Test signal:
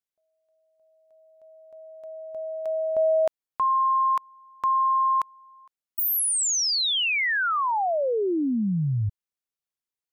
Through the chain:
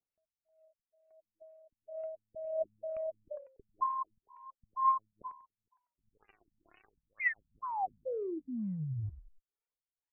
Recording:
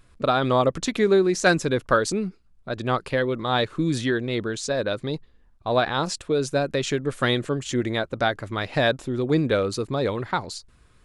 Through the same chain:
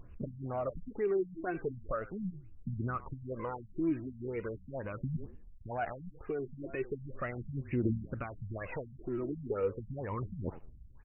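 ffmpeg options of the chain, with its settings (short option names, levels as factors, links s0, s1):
-filter_complex "[0:a]highshelf=f=7800:g=7.5,acompressor=threshold=0.0501:ratio=10:attack=0.15:release=165:knee=6:detection=peak,asplit=2[s0][s1];[s1]asplit=3[s2][s3][s4];[s2]adelay=95,afreqshift=-36,volume=0.158[s5];[s3]adelay=190,afreqshift=-72,volume=0.0525[s6];[s4]adelay=285,afreqshift=-108,volume=0.0172[s7];[s5][s6][s7]amix=inputs=3:normalize=0[s8];[s0][s8]amix=inputs=2:normalize=0,aphaser=in_gain=1:out_gain=1:delay=3.2:decay=0.67:speed=0.38:type=triangular,afftfilt=real='re*lt(b*sr/1024,220*pow(3000/220,0.5+0.5*sin(2*PI*2.1*pts/sr)))':imag='im*lt(b*sr/1024,220*pow(3000/220,0.5+0.5*sin(2*PI*2.1*pts/sr)))':win_size=1024:overlap=0.75,volume=0.596"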